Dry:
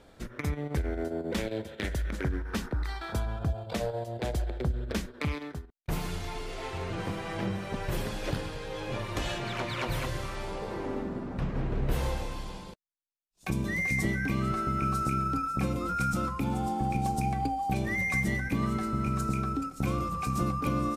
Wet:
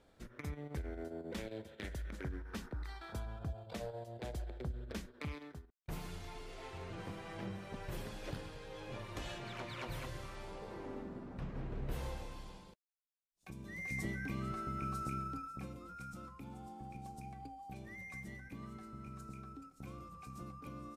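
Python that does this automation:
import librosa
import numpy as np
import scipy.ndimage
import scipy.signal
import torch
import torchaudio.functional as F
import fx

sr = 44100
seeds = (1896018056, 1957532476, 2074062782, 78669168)

y = fx.gain(x, sr, db=fx.line((12.47, -11.5), (13.57, -19.5), (13.96, -11.0), (15.17, -11.0), (15.86, -19.5)))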